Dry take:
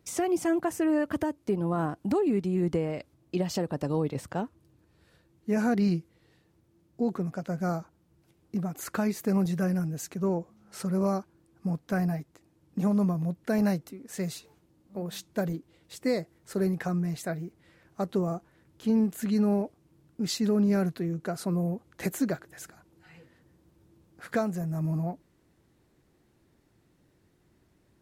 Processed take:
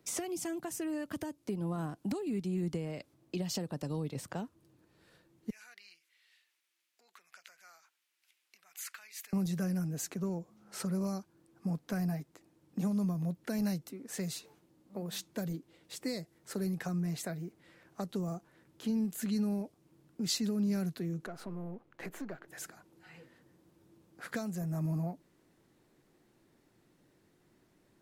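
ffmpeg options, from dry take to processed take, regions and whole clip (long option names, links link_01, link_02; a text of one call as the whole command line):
ffmpeg -i in.wav -filter_complex "[0:a]asettb=1/sr,asplit=3[link_01][link_02][link_03];[link_01]atrim=end=5.504[link_04];[link_02]atrim=start=5.5:end=9.33,asetpts=PTS-STARTPTS,afade=type=in:duration=0.004:curve=qsin,afade=type=out:start_time=3.826:duration=0.004:curve=qsin,acompressor=threshold=-39dB:ratio=4:attack=3.2:release=140:knee=1:detection=peak,highpass=frequency=2300:width_type=q:width=1.6[link_05];[link_03]atrim=start=9.326[link_06];[link_04][link_05]acrossfade=duration=0.004:curve1=hsin:curve2=qsin[link_07];[link_07][link_06]acrossfade=duration=0.004:curve1=qsin:curve2=hsin,asettb=1/sr,asplit=3[link_08][link_09][link_10];[link_08]atrim=end=21.264[link_11];[link_09]atrim=start=21.26:end=22.48,asetpts=PTS-STARTPTS,afade=type=in:duration=0.004:curve=qsin,afade=type=out:start_time=1.216:duration=0.004:curve=qsin,aeval=exprs='if(lt(val(0),0),0.447*val(0),val(0))':channel_layout=same,bass=frequency=250:gain=-2,treble=frequency=4000:gain=-13,acompressor=threshold=-41dB:ratio=2:attack=3.2:release=140:knee=1:detection=peak[link_12];[link_10]atrim=start=22.476[link_13];[link_11][link_12]acrossfade=duration=0.004:curve1=hsin:curve2=qsin[link_14];[link_14][link_13]acrossfade=duration=0.004:curve1=qsin:curve2=hsin,equalizer=frequency=64:width_type=o:width=1.4:gain=-14,acrossover=split=190|3000[link_15][link_16][link_17];[link_16]acompressor=threshold=-39dB:ratio=6[link_18];[link_15][link_18][link_17]amix=inputs=3:normalize=0" out.wav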